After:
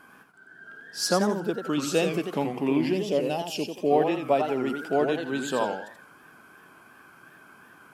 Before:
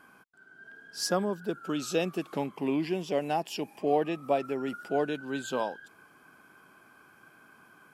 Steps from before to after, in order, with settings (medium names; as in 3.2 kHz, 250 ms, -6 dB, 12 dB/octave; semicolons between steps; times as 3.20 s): time-frequency box 2.93–3.91 s, 630–2400 Hz -8 dB; modulated delay 87 ms, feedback 32%, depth 203 cents, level -6 dB; trim +4 dB